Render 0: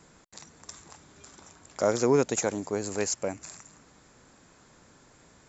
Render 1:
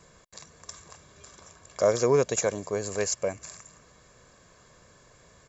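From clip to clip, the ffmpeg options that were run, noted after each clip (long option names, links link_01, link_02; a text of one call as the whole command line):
ffmpeg -i in.wav -af "aecho=1:1:1.8:0.54" out.wav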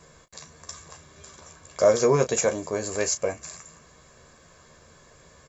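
ffmpeg -i in.wav -af "aecho=1:1:13|36:0.501|0.237,volume=2dB" out.wav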